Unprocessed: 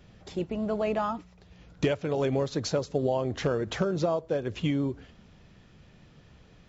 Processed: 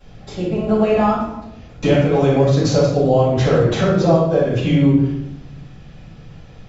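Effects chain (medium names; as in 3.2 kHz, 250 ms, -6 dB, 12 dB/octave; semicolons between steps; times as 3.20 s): simulated room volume 250 m³, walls mixed, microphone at 6.8 m; trim -4.5 dB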